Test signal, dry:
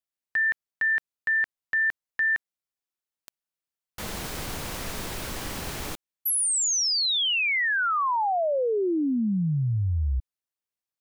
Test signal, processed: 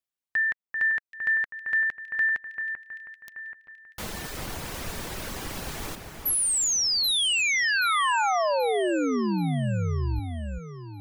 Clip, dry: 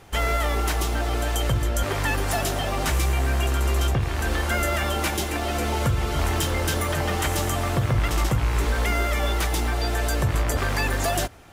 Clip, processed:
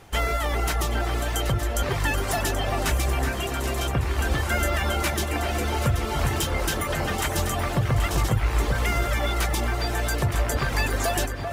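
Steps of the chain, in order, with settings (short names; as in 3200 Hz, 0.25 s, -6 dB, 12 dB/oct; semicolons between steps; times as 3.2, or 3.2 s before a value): reverb removal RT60 0.75 s; echo with dull and thin repeats by turns 0.39 s, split 2300 Hz, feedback 64%, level -5.5 dB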